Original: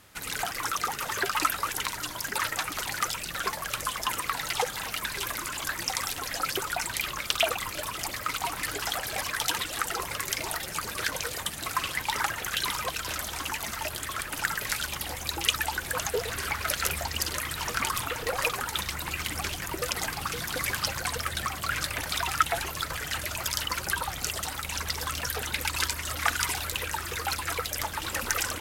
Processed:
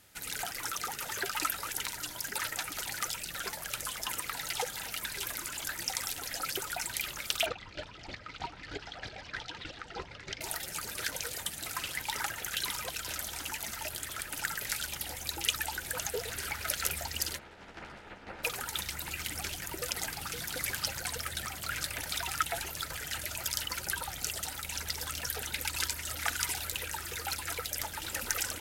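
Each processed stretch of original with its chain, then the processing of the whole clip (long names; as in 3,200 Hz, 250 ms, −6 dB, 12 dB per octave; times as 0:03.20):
0:07.46–0:10.41: low-pass filter 4,700 Hz 24 dB per octave + low-shelf EQ 450 Hz +7 dB + square-wave tremolo 3.2 Hz, depth 60%, duty 20%
0:17.36–0:18.43: ceiling on every frequency bin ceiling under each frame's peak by 21 dB + low-pass filter 1,500 Hz + string-ensemble chorus
whole clip: high-shelf EQ 4,300 Hz +5.5 dB; notch filter 1,100 Hz, Q 5.3; level −7 dB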